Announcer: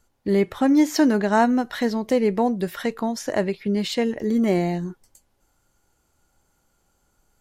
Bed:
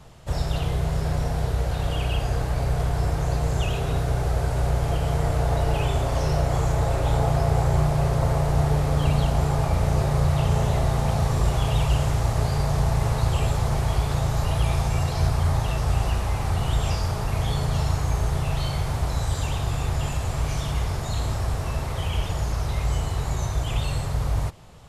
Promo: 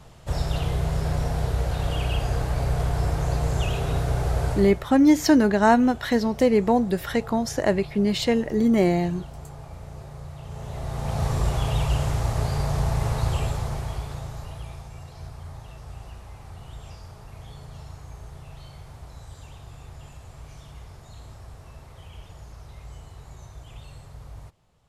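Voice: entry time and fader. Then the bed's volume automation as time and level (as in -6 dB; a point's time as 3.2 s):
4.30 s, +1.0 dB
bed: 4.52 s -0.5 dB
4.87 s -18 dB
10.41 s -18 dB
11.25 s -2 dB
13.32 s -2 dB
14.89 s -17.5 dB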